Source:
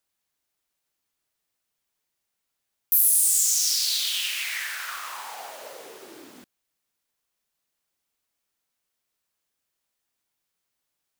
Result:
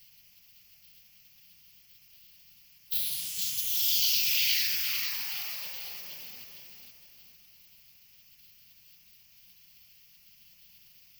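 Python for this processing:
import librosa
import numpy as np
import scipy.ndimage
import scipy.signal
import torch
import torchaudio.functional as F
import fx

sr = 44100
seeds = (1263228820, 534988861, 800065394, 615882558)

p1 = fx.high_shelf(x, sr, hz=3300.0, db=4.0)
p2 = fx.quant_companded(p1, sr, bits=4)
p3 = p2 + fx.echo_feedback(p2, sr, ms=463, feedback_pct=38, wet_db=-4.0, dry=0)
p4 = fx.rider(p3, sr, range_db=4, speed_s=0.5)
p5 = scipy.signal.sosfilt(scipy.signal.butter(2, 86.0, 'highpass', fs=sr, output='sos'), p4)
p6 = 10.0 ** (-18.5 / 20.0) * np.tanh(p5 / 10.0 ** (-18.5 / 20.0))
p7 = p5 + (p6 * 10.0 ** (-7.0 / 20.0))
p8 = fx.quant_dither(p7, sr, seeds[0], bits=8, dither='triangular')
p9 = fx.curve_eq(p8, sr, hz=(190.0, 290.0, 510.0, 1500.0, 3800.0, 9000.0, 14000.0), db=(0, -28, -19, -18, 11, -22, 3))
p10 = fx.spec_gate(p9, sr, threshold_db=-10, keep='weak')
y = p10 * 10.0 ** (-6.0 / 20.0)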